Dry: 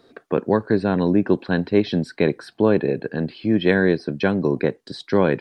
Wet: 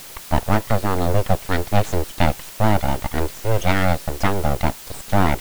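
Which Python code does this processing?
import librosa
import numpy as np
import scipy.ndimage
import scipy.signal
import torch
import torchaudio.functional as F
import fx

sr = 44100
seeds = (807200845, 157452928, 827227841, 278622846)

p1 = fx.rider(x, sr, range_db=10, speed_s=0.5)
p2 = x + (p1 * 10.0 ** (3.0 / 20.0))
p3 = np.abs(p2)
p4 = fx.dmg_noise_colour(p3, sr, seeds[0], colour='white', level_db=-33.0)
y = p4 * 10.0 ** (-5.5 / 20.0)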